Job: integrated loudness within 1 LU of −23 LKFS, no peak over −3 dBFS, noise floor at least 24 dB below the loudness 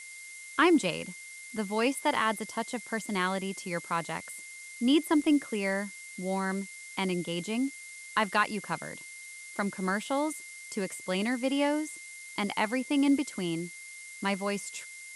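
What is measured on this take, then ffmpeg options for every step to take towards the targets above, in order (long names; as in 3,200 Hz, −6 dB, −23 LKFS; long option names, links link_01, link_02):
interfering tone 2,100 Hz; level of the tone −45 dBFS; background noise floor −46 dBFS; target noise floor −55 dBFS; integrated loudness −30.5 LKFS; sample peak −13.0 dBFS; target loudness −23.0 LKFS
→ -af "bandreject=frequency=2100:width=30"
-af "afftdn=noise_reduction=9:noise_floor=-46"
-af "volume=7.5dB"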